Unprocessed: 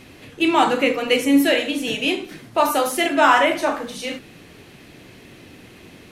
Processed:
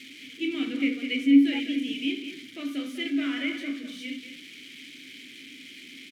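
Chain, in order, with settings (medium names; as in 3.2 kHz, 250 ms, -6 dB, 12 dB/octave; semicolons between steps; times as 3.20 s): zero-crossing glitches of -15 dBFS; vowel filter i; treble shelf 9.4 kHz -5 dB; speakerphone echo 200 ms, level -8 dB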